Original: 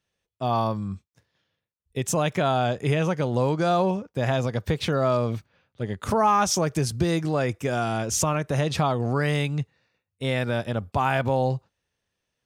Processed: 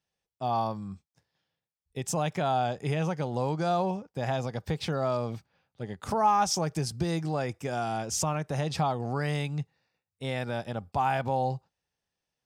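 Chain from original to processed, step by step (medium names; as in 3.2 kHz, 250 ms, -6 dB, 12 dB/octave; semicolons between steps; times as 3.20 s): graphic EQ with 31 bands 100 Hz -3 dB, 160 Hz +4 dB, 800 Hz +8 dB, 5 kHz +6 dB, 8 kHz +3 dB; trim -7.5 dB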